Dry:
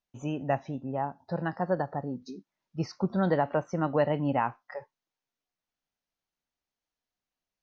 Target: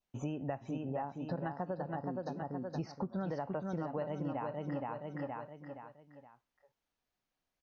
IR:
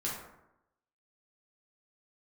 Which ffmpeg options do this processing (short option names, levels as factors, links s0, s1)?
-filter_complex "[0:a]alimiter=limit=0.119:level=0:latency=1:release=448,asplit=2[s0][s1];[s1]aecho=0:1:470|940|1410|1880:0.562|0.197|0.0689|0.0241[s2];[s0][s2]amix=inputs=2:normalize=0,adynamicequalizer=threshold=0.00251:dfrequency=1700:dqfactor=2.5:tfrequency=1700:tqfactor=2.5:attack=5:release=100:ratio=0.375:range=2:mode=cutabove:tftype=bell,acompressor=threshold=0.0126:ratio=6,highshelf=f=4100:g=-7.5,volume=1.41"